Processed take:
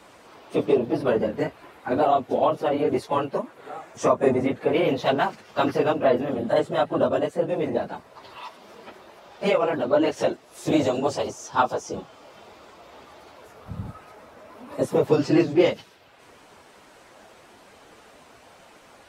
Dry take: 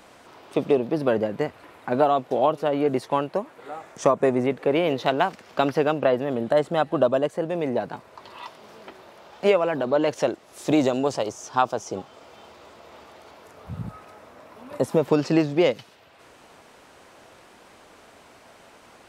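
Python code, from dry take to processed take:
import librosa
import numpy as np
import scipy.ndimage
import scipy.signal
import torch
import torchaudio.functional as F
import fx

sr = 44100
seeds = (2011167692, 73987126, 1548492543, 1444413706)

y = fx.phase_scramble(x, sr, seeds[0], window_ms=50)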